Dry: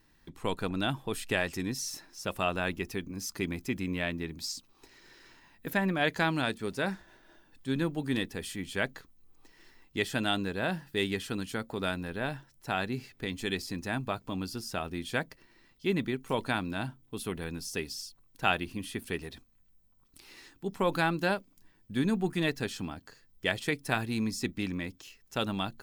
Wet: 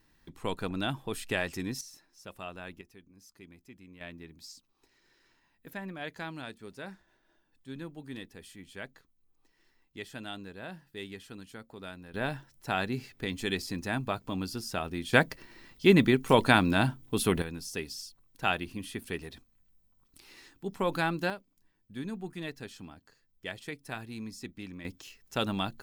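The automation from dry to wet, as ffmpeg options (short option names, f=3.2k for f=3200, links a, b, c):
-af "asetnsamples=n=441:p=0,asendcmd='1.81 volume volume -12dB;2.81 volume volume -19.5dB;4.01 volume volume -11.5dB;12.14 volume volume 1dB;15.13 volume volume 9dB;17.42 volume volume -1.5dB;21.3 volume volume -9.5dB;24.85 volume volume 1dB',volume=-1.5dB"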